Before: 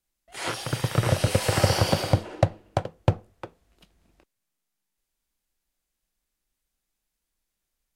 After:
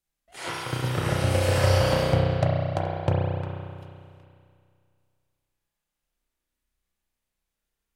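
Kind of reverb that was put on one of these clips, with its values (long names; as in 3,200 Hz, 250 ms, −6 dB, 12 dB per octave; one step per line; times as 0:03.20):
spring reverb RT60 2.2 s, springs 32 ms, chirp 40 ms, DRR −3.5 dB
level −4.5 dB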